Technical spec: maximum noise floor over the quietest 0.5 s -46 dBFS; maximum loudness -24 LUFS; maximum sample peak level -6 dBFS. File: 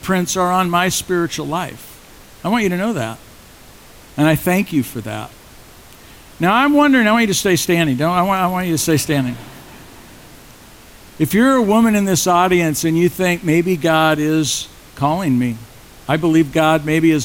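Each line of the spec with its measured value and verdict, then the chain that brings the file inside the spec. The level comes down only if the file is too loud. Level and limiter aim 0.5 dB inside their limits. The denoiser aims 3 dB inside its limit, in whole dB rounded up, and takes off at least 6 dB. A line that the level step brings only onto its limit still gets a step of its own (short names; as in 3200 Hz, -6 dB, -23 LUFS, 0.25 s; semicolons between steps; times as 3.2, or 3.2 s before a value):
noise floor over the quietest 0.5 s -42 dBFS: fail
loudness -16.0 LUFS: fail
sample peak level -4.0 dBFS: fail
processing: gain -8.5 dB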